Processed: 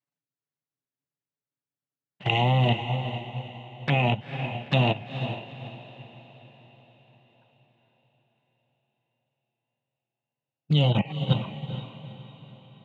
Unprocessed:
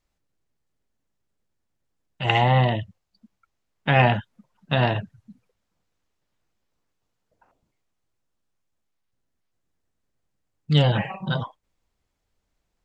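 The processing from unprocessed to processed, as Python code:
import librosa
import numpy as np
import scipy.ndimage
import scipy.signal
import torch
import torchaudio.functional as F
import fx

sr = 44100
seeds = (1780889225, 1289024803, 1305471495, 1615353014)

p1 = fx.peak_eq(x, sr, hz=540.0, db=-2.5, octaves=1.6)
p2 = fx.schmitt(p1, sr, flips_db=-16.0)
p3 = p1 + (p2 * librosa.db_to_amplitude(-8.5))
p4 = fx.dynamic_eq(p3, sr, hz=2400.0, q=2.0, threshold_db=-37.0, ratio=4.0, max_db=6)
p5 = fx.level_steps(p4, sr, step_db=12)
p6 = scipy.signal.sosfilt(scipy.signal.butter(4, 110.0, 'highpass', fs=sr, output='sos'), p5)
p7 = fx.env_flanger(p6, sr, rest_ms=7.1, full_db=-25.5)
p8 = fx.lowpass(p7, sr, hz=3900.0, slope=6)
p9 = p8 + fx.echo_diffused(p8, sr, ms=451, feedback_pct=54, wet_db=-5.5, dry=0)
p10 = fx.upward_expand(p9, sr, threshold_db=-41.0, expansion=1.5)
y = p10 * librosa.db_to_amplitude(6.5)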